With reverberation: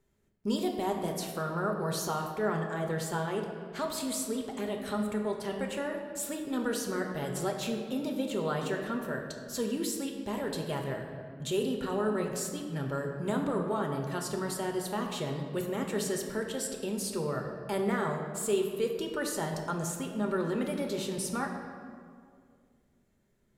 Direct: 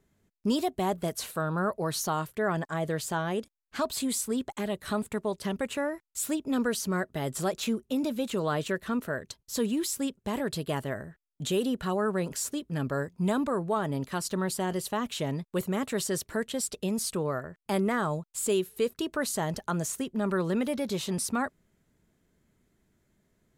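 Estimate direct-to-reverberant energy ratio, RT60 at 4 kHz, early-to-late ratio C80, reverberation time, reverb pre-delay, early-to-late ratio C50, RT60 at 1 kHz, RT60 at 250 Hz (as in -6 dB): 2.0 dB, 1.3 s, 6.0 dB, 2.2 s, 5 ms, 5.0 dB, 2.0 s, 2.4 s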